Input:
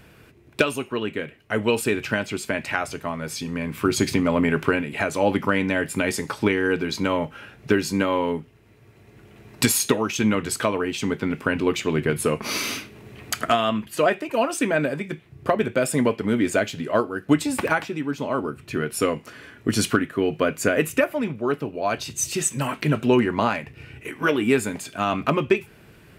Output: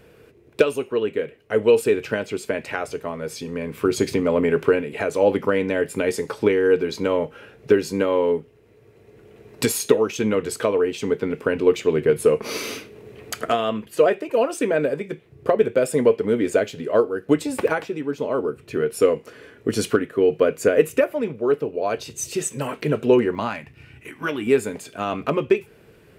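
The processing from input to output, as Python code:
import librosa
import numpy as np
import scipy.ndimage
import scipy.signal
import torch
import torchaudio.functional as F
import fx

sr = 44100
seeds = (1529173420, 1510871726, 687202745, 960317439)

y = fx.peak_eq(x, sr, hz=460.0, db=fx.steps((0.0, 13.0), (23.35, -3.0), (24.47, 10.0)), octaves=0.63)
y = y * 10.0 ** (-4.0 / 20.0)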